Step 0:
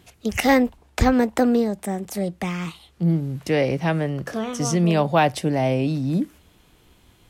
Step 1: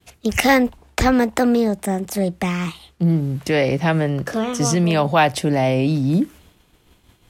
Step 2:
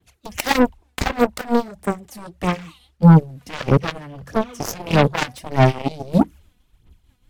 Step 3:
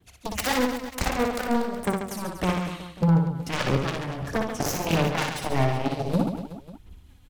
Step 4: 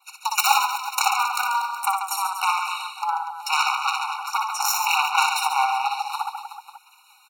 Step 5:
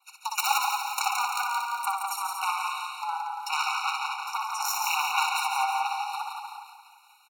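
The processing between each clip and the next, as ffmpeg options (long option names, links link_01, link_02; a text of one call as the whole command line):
ffmpeg -i in.wav -filter_complex "[0:a]agate=range=-33dB:threshold=-49dB:ratio=3:detection=peak,acrossover=split=800[link_01][link_02];[link_01]alimiter=limit=-15.5dB:level=0:latency=1[link_03];[link_03][link_02]amix=inputs=2:normalize=0,volume=5dB" out.wav
ffmpeg -i in.wav -af "asubboost=boost=3:cutoff=200,aphaser=in_gain=1:out_gain=1:delay=4.1:decay=0.64:speed=1.6:type=sinusoidal,aeval=exprs='1.33*(cos(1*acos(clip(val(0)/1.33,-1,1)))-cos(1*PI/2))+0.266*(cos(7*acos(clip(val(0)/1.33,-1,1)))-cos(7*PI/2))':channel_layout=same,volume=-4.5dB" out.wav
ffmpeg -i in.wav -af "acompressor=threshold=-22dB:ratio=12,aeval=exprs='0.158*(abs(mod(val(0)/0.158+3,4)-2)-1)':channel_layout=same,aecho=1:1:60|138|239.4|371.2|542.6:0.631|0.398|0.251|0.158|0.1,volume=2.5dB" out.wav
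ffmpeg -i in.wav -filter_complex "[0:a]asplit=2[link_01][link_02];[link_02]acompressor=threshold=-30dB:ratio=12,volume=0.5dB[link_03];[link_01][link_03]amix=inputs=2:normalize=0,afftfilt=real='re*eq(mod(floor(b*sr/1024/740),2),1)':imag='im*eq(mod(floor(b*sr/1024/740),2),1)':win_size=1024:overlap=0.75,volume=8.5dB" out.wav
ffmpeg -i in.wav -af "aecho=1:1:171|342|513|684|855|1026:0.562|0.27|0.13|0.0622|0.0299|0.0143,volume=-7dB" out.wav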